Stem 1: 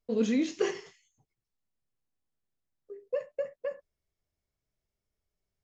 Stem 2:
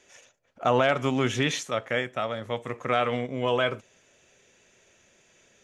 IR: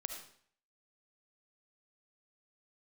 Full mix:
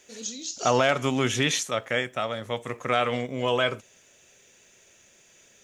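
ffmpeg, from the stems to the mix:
-filter_complex "[0:a]aexciter=amount=11.7:drive=4.3:freq=3200,volume=-16dB[link_01];[1:a]volume=0dB[link_02];[link_01][link_02]amix=inputs=2:normalize=0,highshelf=frequency=4300:gain=9.5"

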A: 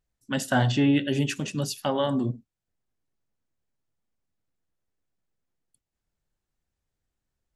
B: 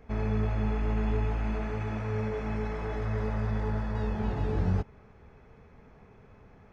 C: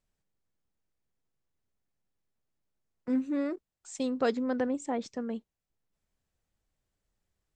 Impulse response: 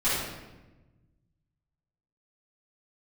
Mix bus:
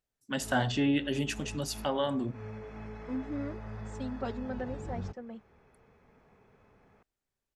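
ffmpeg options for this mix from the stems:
-filter_complex "[0:a]volume=-4dB,asplit=2[link_01][link_02];[1:a]acrossover=split=190[link_03][link_04];[link_04]acompressor=threshold=-42dB:ratio=2[link_05];[link_03][link_05]amix=inputs=2:normalize=0,adelay=300,volume=-5dB[link_06];[2:a]highshelf=frequency=4500:gain=-10,asplit=2[link_07][link_08];[link_08]adelay=4.5,afreqshift=-0.29[link_09];[link_07][link_09]amix=inputs=2:normalize=1,volume=-3.5dB[link_10];[link_02]apad=whole_len=309887[link_11];[link_06][link_11]sidechaincompress=threshold=-36dB:ratio=8:attack=16:release=165[link_12];[link_01][link_12][link_10]amix=inputs=3:normalize=0,lowshelf=frequency=140:gain=-9.5"

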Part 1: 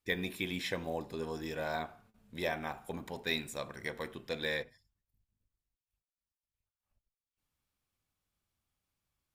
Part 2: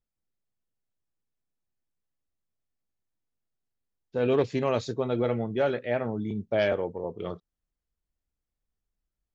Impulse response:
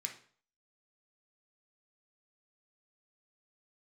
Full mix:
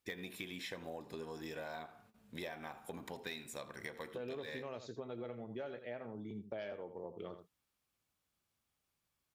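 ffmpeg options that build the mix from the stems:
-filter_complex "[0:a]asoftclip=type=tanh:threshold=-21dB,volume=1.5dB,asplit=2[link_01][link_02];[link_02]volume=-19dB[link_03];[1:a]volume=-5.5dB,asplit=2[link_04][link_05];[link_05]volume=-13dB[link_06];[link_03][link_06]amix=inputs=2:normalize=0,aecho=0:1:82:1[link_07];[link_01][link_04][link_07]amix=inputs=3:normalize=0,highpass=frequency=150:poles=1,acompressor=threshold=-42dB:ratio=6"

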